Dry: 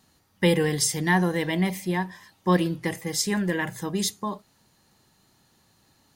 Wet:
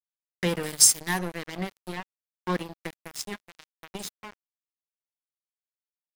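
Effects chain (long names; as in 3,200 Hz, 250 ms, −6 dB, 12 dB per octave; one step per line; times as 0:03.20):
0:00.63–0:01.19: bass and treble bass −2 dB, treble +14 dB
0:02.00–0:02.69: high-pass filter 130 Hz 6 dB per octave
0:03.35–0:03.95: downward compressor 8 to 1, threshold −29 dBFS, peak gain reduction 8.5 dB
dead-zone distortion −25.5 dBFS
one half of a high-frequency compander encoder only
level −3 dB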